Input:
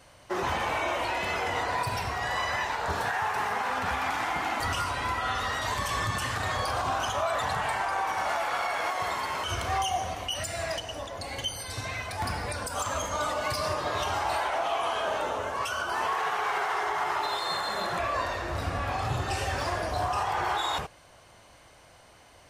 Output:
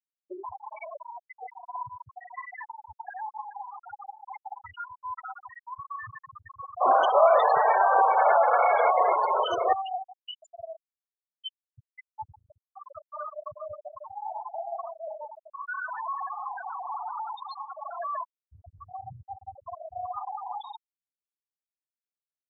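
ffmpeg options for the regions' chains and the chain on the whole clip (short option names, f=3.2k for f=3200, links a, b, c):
-filter_complex "[0:a]asettb=1/sr,asplit=3[a][b][c];[a]atrim=end=6.814[d];[b]atrim=start=6.81:end=9.73,asetpts=PTS-STARTPTS,afade=t=in:d=0.004:c=qsin,afade=t=out:st=2.916:d=0.004:c=qsin,highpass=150,acontrast=78,equalizer=f=500:t=o:w=1.3:g=10.5[e];[c]atrim=start=9.726[f];[d][e]acrossfade=d=0.004:c1=hsin:c2=qsin[g];[g][f]acrossfade=d=0.004:c1=qsin:c2=hsin,asettb=1/sr,asplit=3[h][i][j];[h]atrim=end=15.664[k];[i]atrim=start=15.66:end=18.23,asetpts=PTS-STARTPTS,afade=t=in:d=0.004:c=qsin,afade=t=out:st=2.566:d=0.004:c=qsin,highpass=140,asplit=2[l][m];[m]highpass=f=720:p=1,volume=21dB,asoftclip=type=tanh:threshold=-17.5dB[n];[l][n]amix=inputs=2:normalize=0,lowpass=f=2.3k:p=1,volume=-6dB,volume=25.5dB,asoftclip=hard,volume=-25.5dB[o];[j]atrim=start=18.226[p];[k][o]acrossfade=d=0.004:c1=hsin:c2=qsin[q];[q][p]acrossfade=d=0.004:c1=qsin:c2=hsin,afftfilt=real='re*gte(hypot(re,im),0.2)':imag='im*gte(hypot(re,im),0.2)':win_size=1024:overlap=0.75,highpass=f=660:p=1,highshelf=f=2.9k:g=-10,volume=1dB"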